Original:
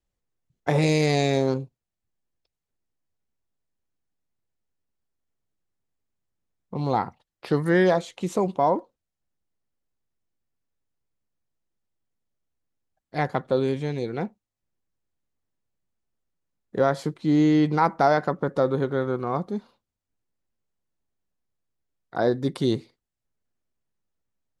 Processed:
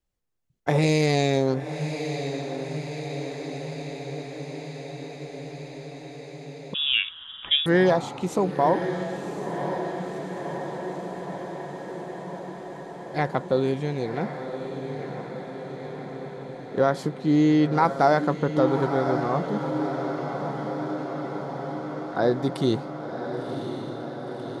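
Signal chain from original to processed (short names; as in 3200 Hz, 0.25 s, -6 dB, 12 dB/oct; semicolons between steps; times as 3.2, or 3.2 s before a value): diffused feedback echo 1.057 s, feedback 75%, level -8 dB; 6.74–7.66 inverted band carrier 3600 Hz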